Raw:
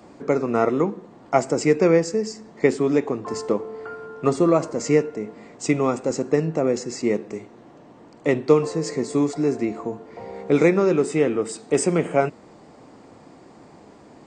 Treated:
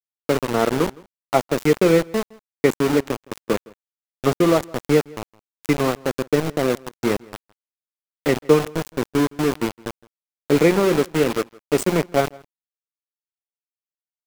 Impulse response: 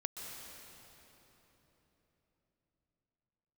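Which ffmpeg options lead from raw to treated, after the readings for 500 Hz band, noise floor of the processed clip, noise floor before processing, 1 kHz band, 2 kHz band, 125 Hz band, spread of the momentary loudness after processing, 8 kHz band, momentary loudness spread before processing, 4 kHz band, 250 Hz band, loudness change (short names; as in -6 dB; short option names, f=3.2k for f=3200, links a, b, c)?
0.0 dB, under -85 dBFS, -48 dBFS, +2.0 dB, +3.5 dB, +2.0 dB, 10 LU, -1.0 dB, 14 LU, +7.0 dB, +0.5 dB, +1.0 dB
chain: -filter_complex "[0:a]anlmdn=0.631,lowshelf=f=320:g=3,aeval=exprs='val(0)*gte(abs(val(0)),0.106)':c=same,asplit=2[a][b];[b]adelay=163.3,volume=-24dB,highshelf=f=4k:g=-3.67[c];[a][c]amix=inputs=2:normalize=0"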